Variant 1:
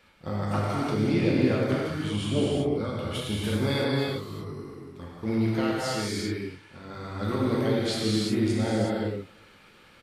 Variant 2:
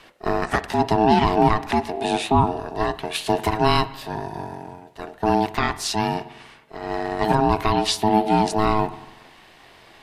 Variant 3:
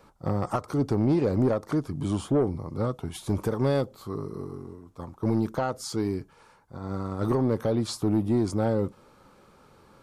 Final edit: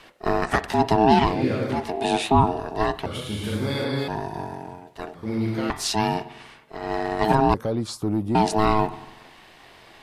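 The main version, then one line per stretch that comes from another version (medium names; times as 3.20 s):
2
1.33–1.78 s: from 1, crossfade 0.24 s
3.06–4.08 s: from 1
5.15–5.70 s: from 1
7.54–8.35 s: from 3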